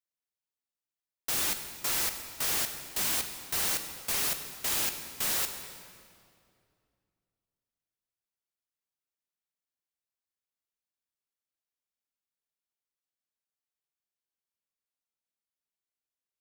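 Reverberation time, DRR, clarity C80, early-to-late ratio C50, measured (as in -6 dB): 2.4 s, 7.0 dB, 9.0 dB, 8.0 dB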